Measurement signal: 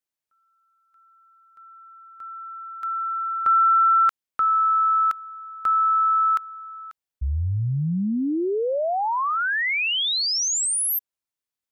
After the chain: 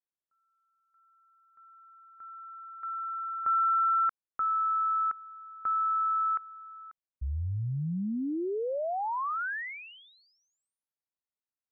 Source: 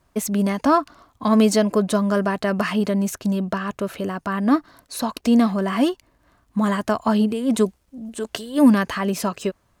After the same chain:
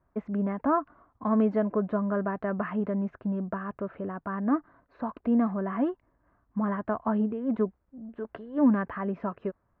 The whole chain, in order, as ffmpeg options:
-af "lowpass=f=1.7k:w=0.5412,lowpass=f=1.7k:w=1.3066,volume=-8dB"

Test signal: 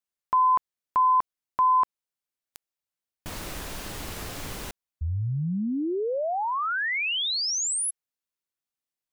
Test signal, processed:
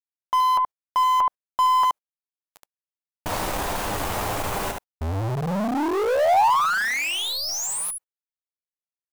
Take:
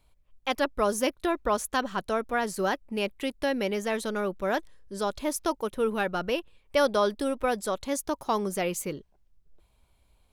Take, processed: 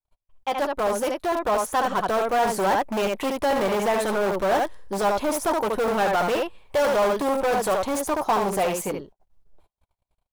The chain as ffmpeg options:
-filter_complex "[0:a]asplit=2[a][b];[b]aecho=0:1:10|74:0.355|0.473[c];[a][c]amix=inputs=2:normalize=0,dynaudnorm=f=290:g=13:m=10dB,aeval=exprs='(tanh(10*val(0)+0.2)-tanh(0.2))/10':c=same,agate=range=-33dB:threshold=-55dB:ratio=3:release=40:detection=rms,adynamicequalizer=threshold=0.01:dfrequency=4600:dqfactor=1.3:tfrequency=4600:tqfactor=1.3:attack=5:release=100:ratio=0.375:range=2:mode=cutabove:tftype=bell,asplit=2[d][e];[e]aeval=exprs='(mod(11.2*val(0)+1,2)-1)/11.2':c=same,volume=-7dB[f];[d][f]amix=inputs=2:normalize=0,equalizer=f=810:w=0.99:g=10.5,volume=-5dB"

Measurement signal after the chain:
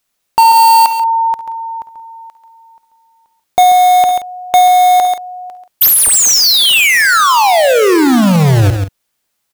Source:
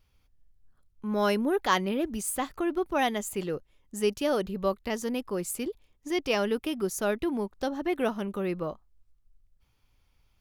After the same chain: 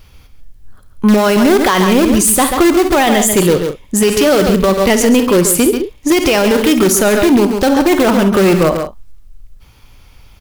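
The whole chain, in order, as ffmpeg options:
-filter_complex "[0:a]asplit=2[a][b];[b]aeval=exprs='(mod(17.8*val(0)+1,2)-1)/17.8':c=same,volume=-8dB[c];[a][c]amix=inputs=2:normalize=0,aecho=1:1:52|68|137|178:0.188|0.126|0.316|0.112,acontrast=27,alimiter=level_in=18dB:limit=-1dB:release=50:level=0:latency=1,volume=-1.5dB"

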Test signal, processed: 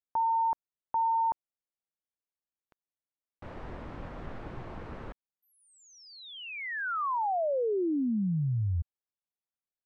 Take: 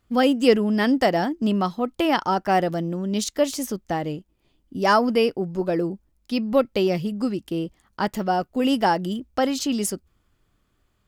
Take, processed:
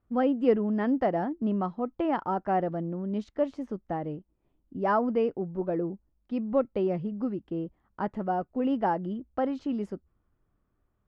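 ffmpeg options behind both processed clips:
-af "lowpass=1.3k,volume=-6dB"

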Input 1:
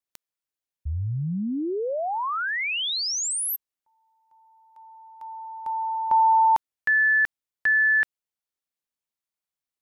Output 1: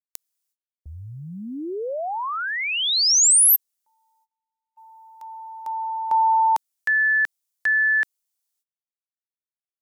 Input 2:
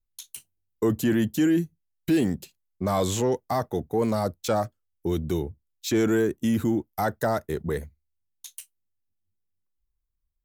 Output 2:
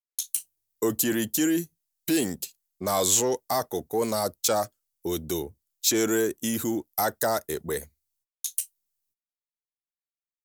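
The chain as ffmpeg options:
-af "bass=f=250:g=-10,treble=f=4k:g=13,agate=range=-30dB:threshold=-48dB:ratio=16:release=340:detection=rms"

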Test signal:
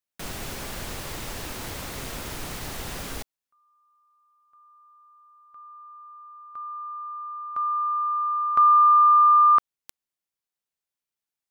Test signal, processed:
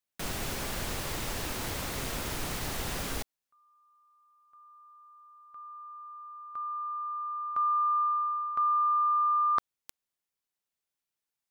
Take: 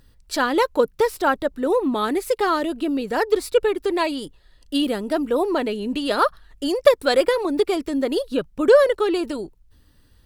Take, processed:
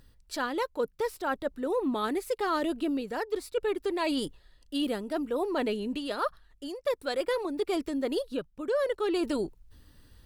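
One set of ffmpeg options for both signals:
-af "areverse,acompressor=threshold=-24dB:ratio=12:attack=8.8:release=763:knee=1:detection=rms,areverse,asoftclip=type=hard:threshold=-15.5dB"

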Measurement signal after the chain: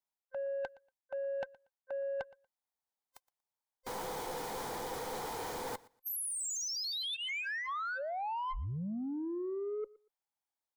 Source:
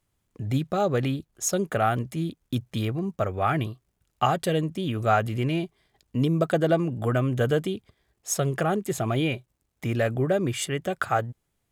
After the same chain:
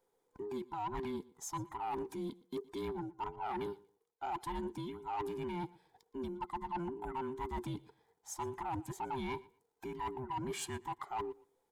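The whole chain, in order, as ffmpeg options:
-filter_complex "[0:a]afftfilt=real='real(if(between(b,1,1008),(2*floor((b-1)/24)+1)*24-b,b),0)':imag='imag(if(between(b,1,1008),(2*floor((b-1)/24)+1)*24-b,b),0)*if(between(b,1,1008),-1,1)':win_size=2048:overlap=0.75,equalizer=f=830:w=1.9:g=13,bandreject=f=2.7k:w=7.2,areverse,acompressor=threshold=-27dB:ratio=12,areverse,asoftclip=type=tanh:threshold=-25dB,asplit=2[a][b];[b]aecho=0:1:118|236:0.0794|0.0151[c];[a][c]amix=inputs=2:normalize=0,volume=-7dB"

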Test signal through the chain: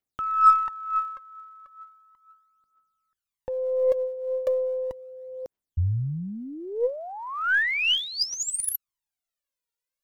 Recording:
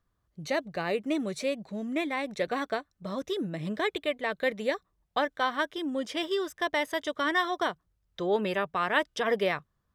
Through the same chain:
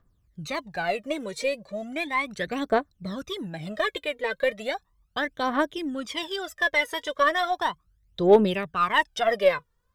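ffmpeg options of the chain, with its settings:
-af "aphaser=in_gain=1:out_gain=1:delay=2.2:decay=0.75:speed=0.36:type=triangular,aeval=exprs='0.473*(cos(1*acos(clip(val(0)/0.473,-1,1)))-cos(1*PI/2))+0.00473*(cos(8*acos(clip(val(0)/0.473,-1,1)))-cos(8*PI/2))':c=same"

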